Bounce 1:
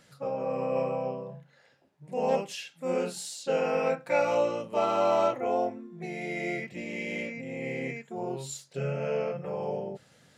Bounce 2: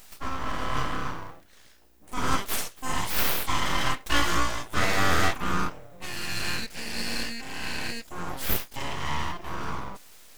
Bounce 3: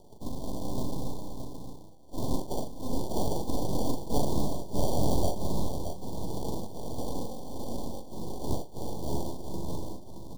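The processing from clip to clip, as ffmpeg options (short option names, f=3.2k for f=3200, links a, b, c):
-af "aemphasis=mode=production:type=riaa,aeval=exprs='val(0)+0.000631*(sin(2*PI*60*n/s)+sin(2*PI*2*60*n/s)/2+sin(2*PI*3*60*n/s)/3+sin(2*PI*4*60*n/s)/4+sin(2*PI*5*60*n/s)/5)':c=same,aeval=exprs='abs(val(0))':c=same,volume=6dB"
-filter_complex "[0:a]acrusher=samples=34:mix=1:aa=0.000001,asuperstop=centerf=1900:order=12:qfactor=0.77,asplit=2[a][b];[b]aecho=0:1:41|388|621:0.282|0.141|0.422[c];[a][c]amix=inputs=2:normalize=0,volume=-4dB"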